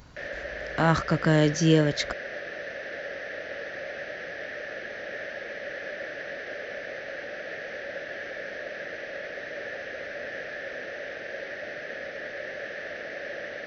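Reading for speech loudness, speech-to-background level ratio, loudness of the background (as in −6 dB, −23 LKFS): −23.5 LKFS, 12.5 dB, −36.0 LKFS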